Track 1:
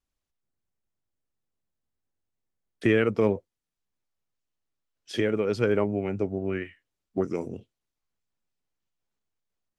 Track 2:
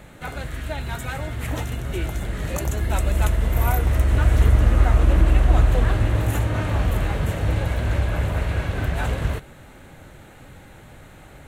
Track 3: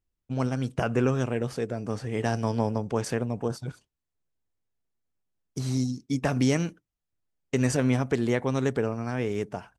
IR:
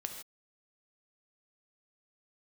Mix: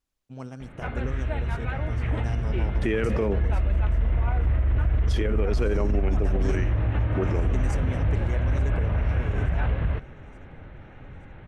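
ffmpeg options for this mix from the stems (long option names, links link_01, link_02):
-filter_complex "[0:a]volume=2dB[link_01];[1:a]lowpass=frequency=2900:width=0.5412,lowpass=frequency=2900:width=1.3066,acompressor=threshold=-22dB:ratio=2.5,lowshelf=frequency=110:gain=8.5,adelay=600,volume=-3dB[link_02];[2:a]equalizer=frequency=4700:width_type=o:width=0.25:gain=-4,volume=-11dB,asplit=2[link_03][link_04];[link_04]volume=-18dB,aecho=0:1:876|1752|2628|3504|4380|5256|6132|7008:1|0.52|0.27|0.141|0.0731|0.038|0.0198|0.0103[link_05];[link_01][link_02][link_03][link_05]amix=inputs=4:normalize=0,alimiter=limit=-16dB:level=0:latency=1:release=13"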